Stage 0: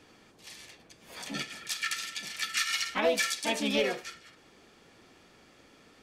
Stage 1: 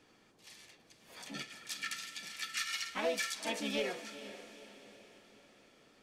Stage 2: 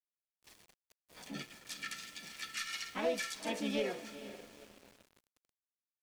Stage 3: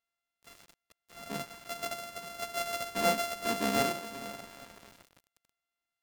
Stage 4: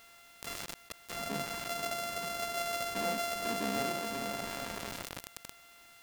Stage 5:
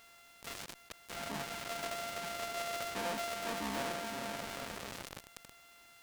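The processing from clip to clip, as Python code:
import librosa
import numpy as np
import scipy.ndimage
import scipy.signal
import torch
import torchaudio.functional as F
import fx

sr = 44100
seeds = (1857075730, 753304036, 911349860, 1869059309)

y1 = fx.peak_eq(x, sr, hz=69.0, db=-7.5, octaves=0.61)
y1 = fx.echo_diffused(y1, sr, ms=475, feedback_pct=48, wet_db=-13.0)
y1 = y1 * 10.0 ** (-7.5 / 20.0)
y2 = np.where(np.abs(y1) >= 10.0 ** (-51.5 / 20.0), y1, 0.0)
y2 = fx.tilt_shelf(y2, sr, db=3.5, hz=660.0)
y3 = np.r_[np.sort(y2[:len(y2) // 64 * 64].reshape(-1, 64), axis=1).ravel(), y2[len(y2) // 64 * 64:]]
y3 = y3 * 10.0 ** (6.0 / 20.0)
y4 = fx.env_flatten(y3, sr, amount_pct=70)
y4 = y4 * 10.0 ** (-8.0 / 20.0)
y5 = fx.diode_clip(y4, sr, knee_db=-27.5)
y5 = fx.doppler_dist(y5, sr, depth_ms=0.67)
y5 = y5 * 10.0 ** (-2.0 / 20.0)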